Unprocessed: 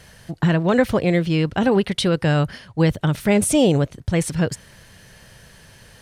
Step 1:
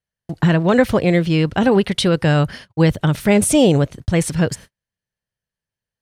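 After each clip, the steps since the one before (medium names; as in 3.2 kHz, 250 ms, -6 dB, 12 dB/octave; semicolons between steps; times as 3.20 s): gate -38 dBFS, range -45 dB; trim +3 dB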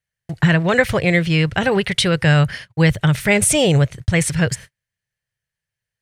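graphic EQ 125/250/1000/2000/8000 Hz +7/-10/-3/+8/+4 dB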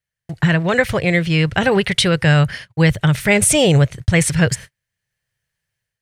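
level rider gain up to 8 dB; trim -1 dB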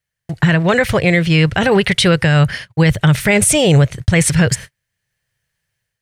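peak limiter -8 dBFS, peak gain reduction 6 dB; trim +4.5 dB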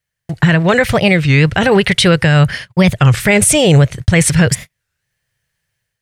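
warped record 33 1/3 rpm, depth 250 cents; trim +2 dB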